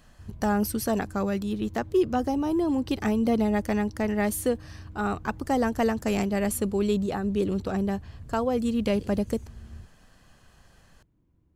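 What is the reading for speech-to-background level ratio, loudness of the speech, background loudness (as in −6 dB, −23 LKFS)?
18.0 dB, −27.0 LKFS, −45.0 LKFS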